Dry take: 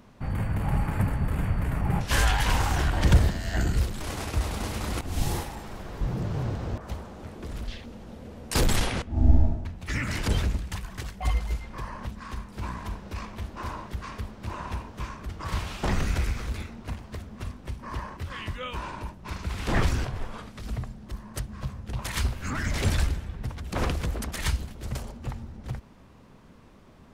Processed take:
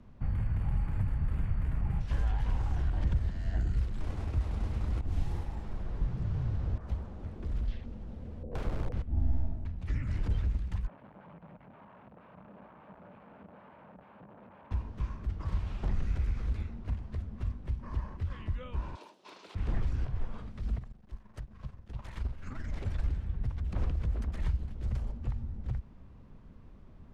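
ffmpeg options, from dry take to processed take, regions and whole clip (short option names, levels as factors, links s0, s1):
-filter_complex "[0:a]asettb=1/sr,asplit=3[s0][s1][s2];[s0]atrim=end=8.434[s3];[s1]atrim=start=8.43:end=8.93,asetpts=PTS-STARTPTS,afade=t=in:d=0.004:c=qsin,afade=t=out:st=0.496:d=0.004:c=qsin,lowpass=f=510:t=q:w=4.8,aeval=exprs='(mod(8.91*val(0)+1,2)-1)/8.91':c=same[s4];[s2]atrim=start=8.926[s5];[s3][s4]acrossfade=d=0.004:c1=hsin:c2=qsin[s6];[s6][s5]acrossfade=d=0.004:c1=qsin:c2=hsin,asettb=1/sr,asplit=3[s7][s8][s9];[s7]atrim=end=10.874[s10];[s8]atrim=start=10.87:end=14.71,asetpts=PTS-STARTPTS,afade=t=in:d=0.004:c=qsin,afade=t=out:st=3.836:d=0.004:c=qsin,acompressor=threshold=0.0112:ratio=16:attack=3.2:release=140:knee=1:detection=peak,aeval=exprs='(mod(106*val(0)+1,2)-1)/106':c=same,highpass=180,equalizer=f=190:t=q:w=4:g=6,equalizer=f=350:t=q:w=4:g=-5,equalizer=f=590:t=q:w=4:g=7,equalizer=f=890:t=q:w=4:g=5,equalizer=f=2000:t=q:w=4:g=-7,lowpass=f=2200:w=0.5412,lowpass=f=2200:w=1.3066[s11];[s9]atrim=start=14.706[s12];[s10][s11]acrossfade=d=0.004:c1=hsin:c2=qsin[s13];[s13][s12]acrossfade=d=0.004:c1=qsin:c2=hsin,asettb=1/sr,asplit=3[s14][s15][s16];[s14]atrim=end=18.954[s17];[s15]atrim=start=18.95:end=19.55,asetpts=PTS-STARTPTS,afade=t=in:d=0.004:c=qsin,afade=t=out:st=0.596:d=0.004:c=qsin,highpass=f=360:w=0.5412,highpass=f=360:w=1.3066,highshelf=f=2600:t=q:w=1.5:g=10.5[s18];[s16]atrim=start=19.546[s19];[s17][s18]acrossfade=d=0.004:c1=hsin:c2=qsin[s20];[s20][s19]acrossfade=d=0.004:c1=qsin:c2=hsin,asettb=1/sr,asplit=3[s21][s22][s23];[s21]atrim=end=20.784[s24];[s22]atrim=start=20.78:end=23.04,asetpts=PTS-STARTPTS,afade=t=in:d=0.004:c=qsin,afade=t=out:st=2.256:d=0.004:c=qsin,equalizer=f=71:w=0.3:g=-8.5,tremolo=f=23:d=0.462,aeval=exprs='sgn(val(0))*max(abs(val(0))-0.002,0)':c=same[s25];[s23]atrim=start=23.036[s26];[s24][s25]acrossfade=d=0.004:c1=hsin:c2=qsin[s27];[s27][s26]acrossfade=d=0.004:c1=qsin:c2=hsin,aemphasis=mode=reproduction:type=bsi,acrossover=split=120|970|2700[s28][s29][s30][s31];[s28]acompressor=threshold=0.112:ratio=4[s32];[s29]acompressor=threshold=0.0251:ratio=4[s33];[s30]acompressor=threshold=0.00501:ratio=4[s34];[s31]acompressor=threshold=0.00224:ratio=4[s35];[s32][s33][s34][s35]amix=inputs=4:normalize=0,volume=0.355"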